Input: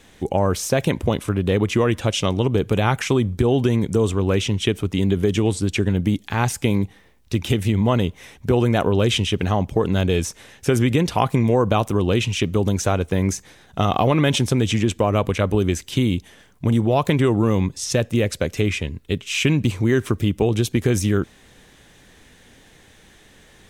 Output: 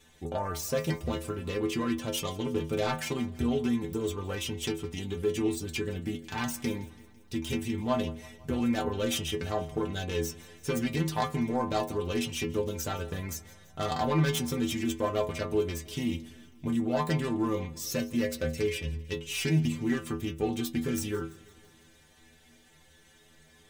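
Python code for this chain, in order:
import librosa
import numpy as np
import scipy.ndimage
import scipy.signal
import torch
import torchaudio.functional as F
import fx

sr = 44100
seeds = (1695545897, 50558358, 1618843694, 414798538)

p1 = fx.self_delay(x, sr, depth_ms=0.14)
p2 = fx.high_shelf(p1, sr, hz=5700.0, db=4.5)
p3 = fx.stiff_resonator(p2, sr, f0_hz=77.0, decay_s=0.43, stiffness=0.008)
y = p3 + fx.echo_feedback(p3, sr, ms=167, feedback_pct=59, wet_db=-20.5, dry=0)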